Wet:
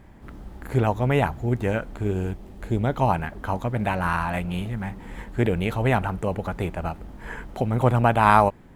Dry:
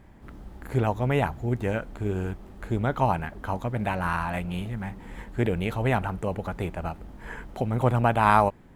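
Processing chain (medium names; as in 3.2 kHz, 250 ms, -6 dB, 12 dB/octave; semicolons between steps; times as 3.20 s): 2.11–3.07 s: peaking EQ 1.3 kHz -6 dB 0.96 oct; trim +3 dB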